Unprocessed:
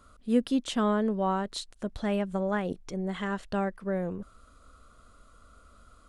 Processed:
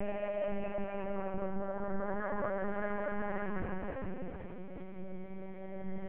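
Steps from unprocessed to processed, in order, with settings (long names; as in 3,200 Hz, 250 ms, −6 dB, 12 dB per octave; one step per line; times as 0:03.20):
Butterworth low-pass 2,600 Hz 36 dB per octave
extreme stretch with random phases 6.8×, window 0.50 s, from 0:02.14
brickwall limiter −22.5 dBFS, peak gain reduction 6 dB
parametric band 390 Hz −14.5 dB 0.29 octaves
on a send: feedback delay with all-pass diffusion 484 ms, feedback 42%, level −14 dB
on the sum: linear-prediction vocoder at 8 kHz pitch kept
level −3 dB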